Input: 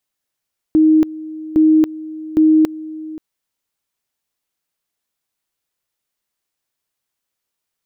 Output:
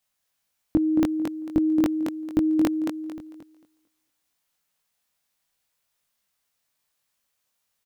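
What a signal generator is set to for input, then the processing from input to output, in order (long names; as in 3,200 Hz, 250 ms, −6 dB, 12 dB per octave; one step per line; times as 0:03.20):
tone at two levels in turn 313 Hz −7.5 dBFS, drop 18.5 dB, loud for 0.28 s, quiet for 0.53 s, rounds 3
parametric band 360 Hz −11 dB 0.39 octaves
double-tracking delay 21 ms −2.5 dB
on a send: feedback echo with a high-pass in the loop 224 ms, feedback 25%, high-pass 180 Hz, level −4.5 dB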